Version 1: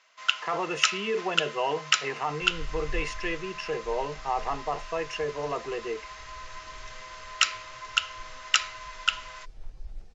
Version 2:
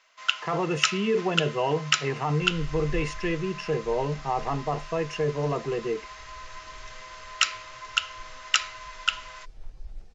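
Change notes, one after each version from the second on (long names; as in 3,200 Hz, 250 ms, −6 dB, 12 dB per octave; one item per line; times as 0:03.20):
speech: remove meter weighting curve A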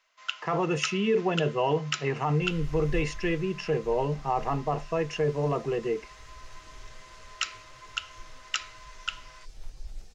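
first sound −8.0 dB
second sound: remove low-pass filter 1,600 Hz 6 dB per octave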